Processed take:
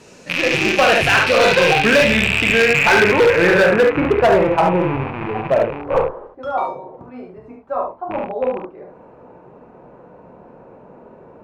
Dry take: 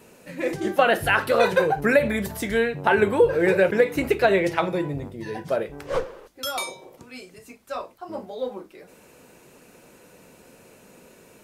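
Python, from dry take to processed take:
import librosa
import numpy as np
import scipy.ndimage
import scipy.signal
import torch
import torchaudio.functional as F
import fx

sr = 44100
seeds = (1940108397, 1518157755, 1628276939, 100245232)

p1 = fx.rattle_buzz(x, sr, strikes_db=-39.0, level_db=-13.0)
p2 = p1 + fx.room_early_taps(p1, sr, ms=(28, 45, 72), db=(-11.0, -7.0, -5.0), dry=0)
p3 = fx.filter_sweep_lowpass(p2, sr, from_hz=6000.0, to_hz=920.0, start_s=1.19, end_s=4.49, q=2.0)
p4 = fx.peak_eq(p3, sr, hz=130.0, db=3.0, octaves=0.48)
p5 = np.clip(p4, -10.0 ** (-13.5 / 20.0), 10.0 ** (-13.5 / 20.0))
y = F.gain(torch.from_numpy(p5), 5.0).numpy()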